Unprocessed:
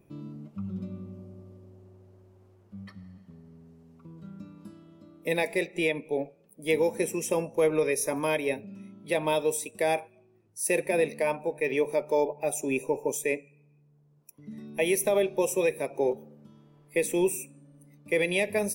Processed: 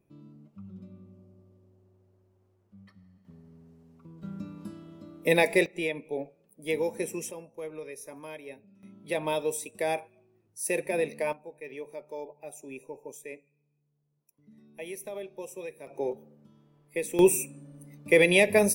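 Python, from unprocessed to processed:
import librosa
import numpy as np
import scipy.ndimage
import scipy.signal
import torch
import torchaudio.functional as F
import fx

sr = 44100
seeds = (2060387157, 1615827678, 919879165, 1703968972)

y = fx.gain(x, sr, db=fx.steps((0.0, -10.0), (3.25, -2.0), (4.23, 5.0), (5.66, -4.0), (7.31, -15.0), (8.83, -3.0), (11.33, -14.0), (15.87, -5.0), (17.19, 6.0)))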